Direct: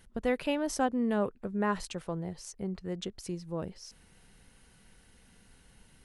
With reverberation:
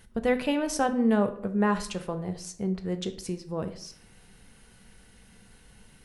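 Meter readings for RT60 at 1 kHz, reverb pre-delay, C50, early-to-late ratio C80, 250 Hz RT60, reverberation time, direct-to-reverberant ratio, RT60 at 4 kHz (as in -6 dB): 0.60 s, 3 ms, 13.5 dB, 17.0 dB, 0.65 s, 0.60 s, 8.0 dB, 0.40 s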